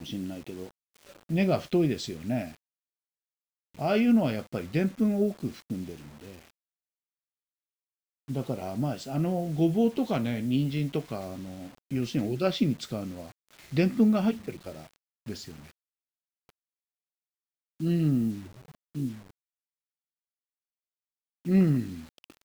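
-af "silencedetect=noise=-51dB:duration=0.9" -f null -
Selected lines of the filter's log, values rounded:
silence_start: 2.57
silence_end: 3.74 | silence_duration: 1.18
silence_start: 6.50
silence_end: 8.28 | silence_duration: 1.78
silence_start: 16.50
silence_end: 17.80 | silence_duration: 1.30
silence_start: 19.31
silence_end: 21.45 | silence_duration: 2.14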